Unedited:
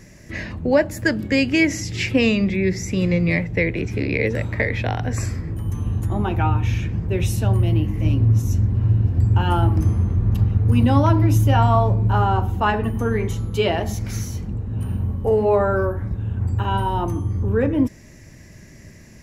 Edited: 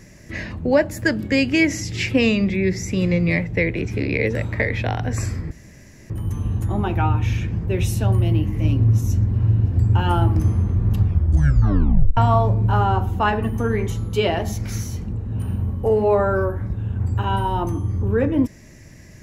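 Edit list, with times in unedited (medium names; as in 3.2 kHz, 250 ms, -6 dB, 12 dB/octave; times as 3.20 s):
5.51 s: insert room tone 0.59 s
10.39 s: tape stop 1.19 s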